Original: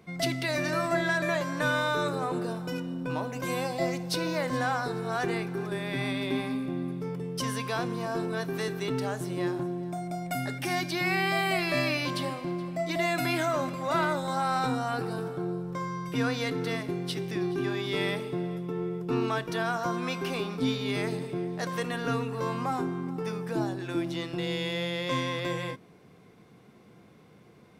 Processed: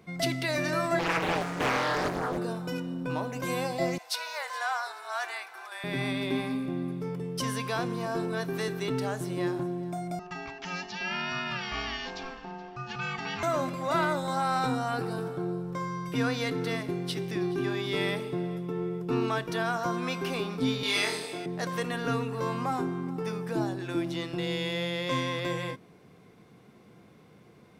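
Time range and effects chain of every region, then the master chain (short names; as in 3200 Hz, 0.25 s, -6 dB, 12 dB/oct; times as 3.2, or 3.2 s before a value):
0.99–2.38 de-hum 91.7 Hz, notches 31 + Doppler distortion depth 0.93 ms
3.98–5.84 inverse Chebyshev high-pass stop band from 290 Hz, stop band 50 dB + frequency shift -22 Hz
10.19–13.43 rippled Chebyshev low-pass 6900 Hz, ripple 6 dB + ring modulator 540 Hz
20.83–21.46 HPF 350 Hz + bell 6400 Hz +9.5 dB 2.9 oct + flutter echo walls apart 4.1 m, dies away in 0.43 s
whole clip: dry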